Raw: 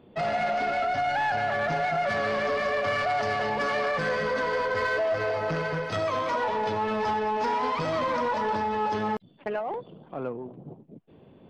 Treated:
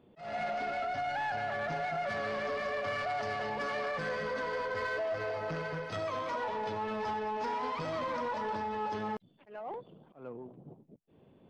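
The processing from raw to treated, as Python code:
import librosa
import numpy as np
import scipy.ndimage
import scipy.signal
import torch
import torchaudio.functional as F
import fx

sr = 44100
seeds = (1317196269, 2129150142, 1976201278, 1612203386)

y = fx.auto_swell(x, sr, attack_ms=227.0)
y = y * librosa.db_to_amplitude(-8.0)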